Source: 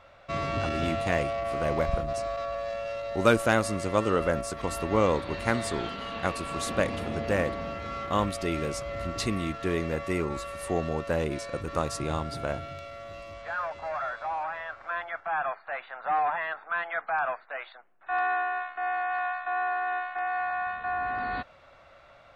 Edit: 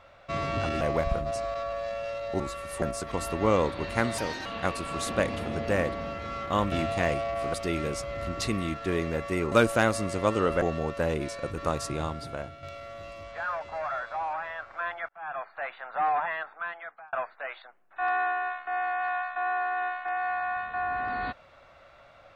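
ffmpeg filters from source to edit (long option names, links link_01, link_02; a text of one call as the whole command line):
ffmpeg -i in.wav -filter_complex "[0:a]asplit=13[link_01][link_02][link_03][link_04][link_05][link_06][link_07][link_08][link_09][link_10][link_11][link_12][link_13];[link_01]atrim=end=0.812[link_14];[link_02]atrim=start=1.628:end=3.222[link_15];[link_03]atrim=start=10.298:end=10.722[link_16];[link_04]atrim=start=4.318:end=5.684[link_17];[link_05]atrim=start=5.68:end=6.06,asetpts=PTS-STARTPTS,asetrate=60417,aresample=44100,atrim=end_sample=12232,asetpts=PTS-STARTPTS[link_18];[link_06]atrim=start=6.056:end=8.322[link_19];[link_07]atrim=start=0.808:end=1.632[link_20];[link_08]atrim=start=8.318:end=10.302[link_21];[link_09]atrim=start=3.218:end=4.322[link_22];[link_10]atrim=start=10.718:end=12.73,asetpts=PTS-STARTPTS,afade=type=out:start_time=1.232:duration=0.78:silence=0.375837[link_23];[link_11]atrim=start=12.73:end=15.19,asetpts=PTS-STARTPTS,afade=type=in:duration=0.004:curve=hsin:silence=0.375837,afade=type=out:start_time=2.456:duration=0.004:curve=hsin[link_24];[link_12]atrim=start=15.19:end=17.23,asetpts=PTS-STARTPTS,afade=type=in:duration=0.46,afade=type=out:start_time=1.21:duration=0.83[link_25];[link_13]atrim=start=17.23,asetpts=PTS-STARTPTS,afade=type=in:duration=0.004:curve=hsin[link_26];[link_14][link_15]acrossfade=duration=0.004:curve1=hsin:curve2=hsin[link_27];[link_27][link_16]acrossfade=duration=0.004:curve1=hsin:curve2=hsin[link_28];[link_28][link_17]acrossfade=duration=0.004:curve1=hsin:curve2=hsin[link_29];[link_29][link_18]acrossfade=duration=0.004:curve1=hsin:curve2=hsin[link_30];[link_30][link_19]acrossfade=duration=0.004:curve1=hsin:curve2=hsin[link_31];[link_31][link_20]acrossfade=duration=0.004:curve1=hsin:curve2=hsin[link_32];[link_32][link_21]acrossfade=duration=0.004:curve1=hsin:curve2=hsin[link_33];[link_33][link_22]acrossfade=duration=0.004:curve1=hsin:curve2=hsin[link_34];[link_23][link_24][link_25][link_26]concat=n=4:v=0:a=1[link_35];[link_34][link_35]acrossfade=duration=0.004:curve1=hsin:curve2=hsin" out.wav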